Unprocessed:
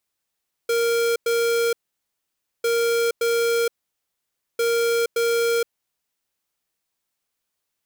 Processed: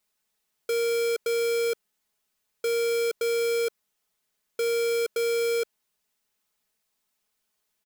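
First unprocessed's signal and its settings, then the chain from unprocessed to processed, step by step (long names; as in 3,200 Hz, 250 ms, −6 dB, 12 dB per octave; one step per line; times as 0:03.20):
beeps in groups square 466 Hz, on 0.47 s, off 0.10 s, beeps 2, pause 0.91 s, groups 3, −20.5 dBFS
comb filter 4.7 ms, depth 76%
soft clipping −23 dBFS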